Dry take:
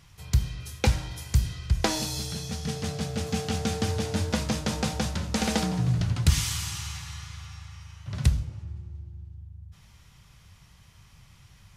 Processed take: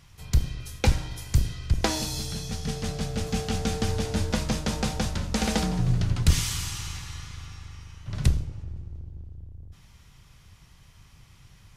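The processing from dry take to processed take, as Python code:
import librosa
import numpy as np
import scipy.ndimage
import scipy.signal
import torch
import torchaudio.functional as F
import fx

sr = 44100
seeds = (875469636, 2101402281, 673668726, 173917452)

y = fx.octave_divider(x, sr, octaves=2, level_db=-4.0)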